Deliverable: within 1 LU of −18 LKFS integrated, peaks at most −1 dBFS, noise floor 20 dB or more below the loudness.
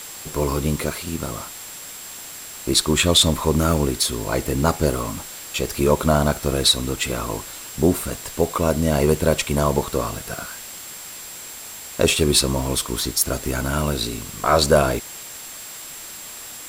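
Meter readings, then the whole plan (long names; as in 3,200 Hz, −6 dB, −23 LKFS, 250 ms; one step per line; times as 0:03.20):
interfering tone 7,600 Hz; level of the tone −39 dBFS; background noise floor −37 dBFS; target noise floor −41 dBFS; integrated loudness −20.5 LKFS; sample peak −4.0 dBFS; target loudness −18.0 LKFS
→ notch filter 7,600 Hz, Q 30
noise reduction from a noise print 6 dB
level +2.5 dB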